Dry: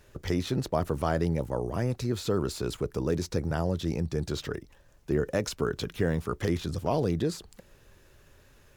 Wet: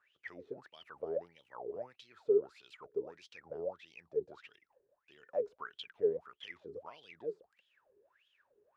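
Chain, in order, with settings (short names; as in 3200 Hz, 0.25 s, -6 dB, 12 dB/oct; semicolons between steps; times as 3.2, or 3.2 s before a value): wah 1.6 Hz 400–3300 Hz, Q 20; gain +6 dB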